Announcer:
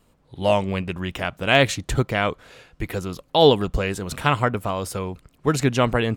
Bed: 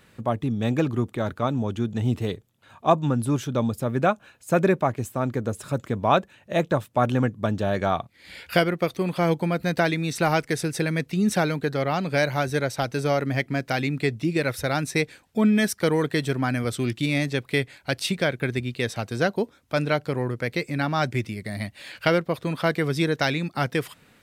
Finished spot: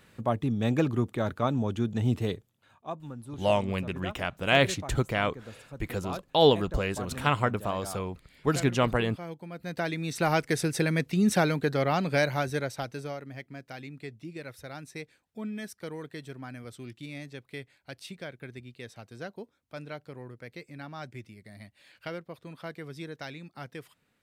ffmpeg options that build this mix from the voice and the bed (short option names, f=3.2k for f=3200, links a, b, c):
-filter_complex "[0:a]adelay=3000,volume=-5.5dB[a];[1:a]volume=14dB,afade=t=out:st=2.39:d=0.45:silence=0.16788,afade=t=in:st=9.49:d=1.09:silence=0.149624,afade=t=out:st=11.99:d=1.22:silence=0.16788[b];[a][b]amix=inputs=2:normalize=0"